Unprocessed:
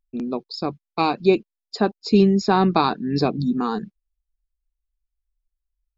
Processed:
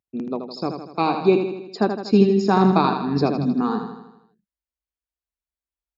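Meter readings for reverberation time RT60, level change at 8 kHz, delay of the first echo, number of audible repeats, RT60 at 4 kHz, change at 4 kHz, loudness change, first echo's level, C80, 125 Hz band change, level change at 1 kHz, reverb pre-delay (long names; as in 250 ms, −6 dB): no reverb audible, can't be measured, 80 ms, 6, no reverb audible, −3.5 dB, +0.5 dB, −7.0 dB, no reverb audible, +1.0 dB, +0.5 dB, no reverb audible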